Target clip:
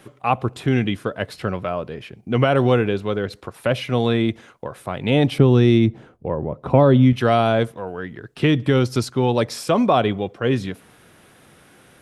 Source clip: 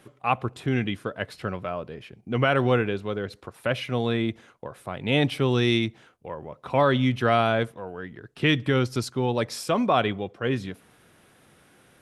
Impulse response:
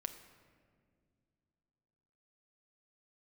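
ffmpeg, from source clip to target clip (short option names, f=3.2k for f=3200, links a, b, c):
-filter_complex "[0:a]asettb=1/sr,asplit=3[a][b][c];[a]atrim=end=5.384[d];[b]atrim=start=5.38:end=7.13,asetpts=PTS-STARTPTS,afade=t=in:d=0.004:c=qsin,afade=t=out:st=1.746:d=0.004:c=qsin,tiltshelf=f=970:g=10[e];[c]atrim=start=7.126[f];[d][e]acrossfade=d=0.004:c1=hsin:c2=qsin[g];[g][f]acrossfade=d=0.004:c1=qsin:c2=hsin,acrossover=split=1100|2900[h][i][j];[h]acompressor=threshold=-17dB:ratio=4[k];[i]acompressor=threshold=-39dB:ratio=4[l];[j]acompressor=threshold=-37dB:ratio=4[m];[k][l][m]amix=inputs=3:normalize=0,volume=6.5dB"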